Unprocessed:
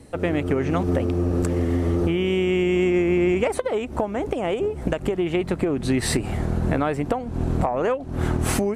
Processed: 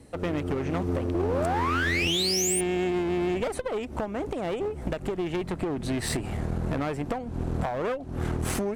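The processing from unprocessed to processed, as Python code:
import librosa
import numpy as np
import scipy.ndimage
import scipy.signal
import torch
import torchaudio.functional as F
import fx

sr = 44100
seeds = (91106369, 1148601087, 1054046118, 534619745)

y = fx.spec_paint(x, sr, seeds[0], shape='rise', start_s=1.14, length_s=1.47, low_hz=320.0, high_hz=9700.0, level_db=-20.0)
y = fx.clip_asym(y, sr, top_db=-24.5, bottom_db=-13.0)
y = F.gain(torch.from_numpy(y), -4.5).numpy()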